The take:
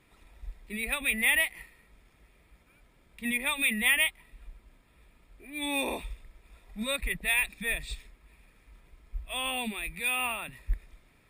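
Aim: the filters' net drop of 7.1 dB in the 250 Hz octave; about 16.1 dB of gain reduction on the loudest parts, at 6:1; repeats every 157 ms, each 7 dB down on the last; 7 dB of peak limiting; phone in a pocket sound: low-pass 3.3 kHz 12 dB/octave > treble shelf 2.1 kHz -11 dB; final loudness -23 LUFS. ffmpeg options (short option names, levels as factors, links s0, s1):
-af "equalizer=f=250:t=o:g=-8,acompressor=threshold=0.0112:ratio=6,alimiter=level_in=3.35:limit=0.0631:level=0:latency=1,volume=0.299,lowpass=3300,highshelf=f=2100:g=-11,aecho=1:1:157|314|471|628|785:0.447|0.201|0.0905|0.0407|0.0183,volume=21.1"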